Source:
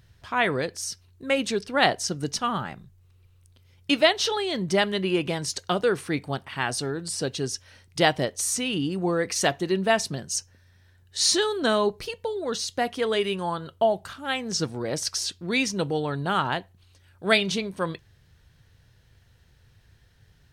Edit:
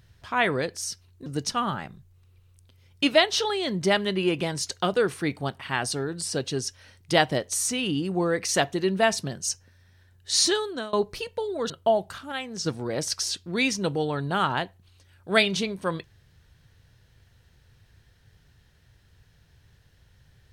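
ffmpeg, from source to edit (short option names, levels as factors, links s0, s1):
-filter_complex "[0:a]asplit=6[s0][s1][s2][s3][s4][s5];[s0]atrim=end=1.262[s6];[s1]atrim=start=2.128:end=11.8,asetpts=PTS-STARTPTS,afade=t=out:st=9.232:d=0.44:silence=0.0630957[s7];[s2]atrim=start=11.8:end=12.572,asetpts=PTS-STARTPTS,afade=t=in:d=0.004:c=hsin:silence=0.0630957[s8];[s3]atrim=start=13.648:end=14.272[s9];[s4]atrim=start=14.268:end=14.612,asetpts=PTS-STARTPTS,volume=0.562[s10];[s5]atrim=start=14.608[s11];[s7][s8]concat=n=2:v=0:a=1[s12];[s6][s12]acrossfade=d=0.004:c1=hsin:c2=hsin[s13];[s13][s9]acrossfade=d=0.004:c1=hsin:c2=hsin[s14];[s14][s10]acrossfade=d=0.004:c1=hsin:c2=hsin[s15];[s15][s11]acrossfade=d=0.004:c1=hsin:c2=hsin"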